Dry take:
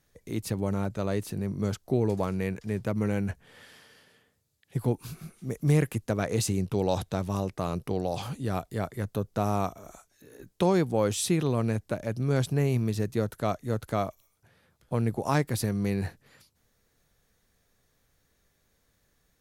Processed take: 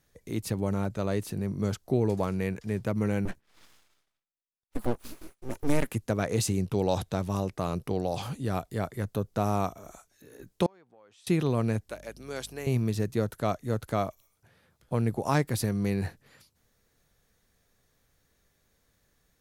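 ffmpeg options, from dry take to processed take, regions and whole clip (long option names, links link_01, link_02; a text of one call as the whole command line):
ffmpeg -i in.wav -filter_complex "[0:a]asettb=1/sr,asplit=3[link_01][link_02][link_03];[link_01]atrim=end=3.254[link_04];[link_02]atrim=start=3.25:end=5.9,asetpts=PTS-STARTPTS,afade=type=in:duration=0.004:curve=qsin,afade=type=out:start_time=2.646:duration=0.004:curve=qsin,agate=range=-33dB:threshold=-49dB:ratio=3:release=100:detection=peak,aeval=exprs='abs(val(0))':channel_layout=same[link_05];[link_03]atrim=start=5.896[link_06];[link_04][link_05]acrossfade=duration=0.004:curve1=hsin:curve2=qsin[link_07];[link_07][link_06]acrossfade=duration=0.004:curve1=qsin:curve2=hsin,asettb=1/sr,asplit=3[link_08][link_09][link_10];[link_08]atrim=end=10.664[link_11];[link_09]atrim=start=10.66:end=11.27,asetpts=PTS-STARTPTS,afade=type=in:duration=0.004:curve=qsin,afade=type=out:start_time=0.606:duration=0.004:curve=qsin,lowpass=1300,aderivative,acompressor=threshold=-53dB:ratio=4:attack=3.2:release=140:knee=1:detection=peak[link_12];[link_10]atrim=start=11.266[link_13];[link_11][link_12]acrossfade=duration=0.004:curve1=hsin:curve2=qsin[link_14];[link_14][link_13]acrossfade=duration=0.004:curve1=qsin:curve2=hsin,asettb=1/sr,asplit=3[link_15][link_16][link_17];[link_15]atrim=end=11.894[link_18];[link_16]atrim=start=11.89:end=12.67,asetpts=PTS-STARTPTS,afade=type=in:duration=0.004:curve=qsin,afade=type=out:start_time=0.776:duration=0.004:curve=qsin,highpass=490,equalizer=frequency=830:width_type=o:width=2.6:gain=-6,aeval=exprs='val(0)+0.00251*(sin(2*PI*50*n/s)+sin(2*PI*2*50*n/s)/2+sin(2*PI*3*50*n/s)/3+sin(2*PI*4*50*n/s)/4+sin(2*PI*5*50*n/s)/5)':channel_layout=same[link_19];[link_17]atrim=start=12.666[link_20];[link_18][link_19]acrossfade=duration=0.004:curve1=hsin:curve2=qsin[link_21];[link_21][link_20]acrossfade=duration=0.004:curve1=qsin:curve2=hsin" out.wav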